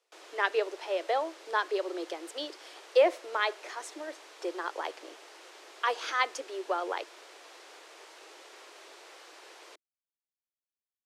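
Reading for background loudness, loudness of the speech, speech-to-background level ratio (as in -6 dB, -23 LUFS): -50.5 LUFS, -32.0 LUFS, 18.5 dB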